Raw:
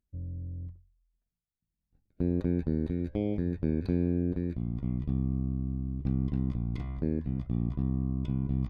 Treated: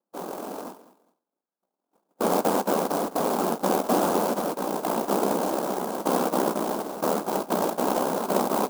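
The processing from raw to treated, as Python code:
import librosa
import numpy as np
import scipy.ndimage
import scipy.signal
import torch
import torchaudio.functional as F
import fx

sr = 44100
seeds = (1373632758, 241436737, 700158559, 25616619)

p1 = fx.noise_vocoder(x, sr, seeds[0], bands=2)
p2 = fx.brickwall_bandpass(p1, sr, low_hz=170.0, high_hz=1700.0)
p3 = p2 + fx.echo_feedback(p2, sr, ms=207, feedback_pct=24, wet_db=-17.5, dry=0)
p4 = fx.clock_jitter(p3, sr, seeds[1], jitter_ms=0.059)
y = p4 * 10.0 ** (6.5 / 20.0)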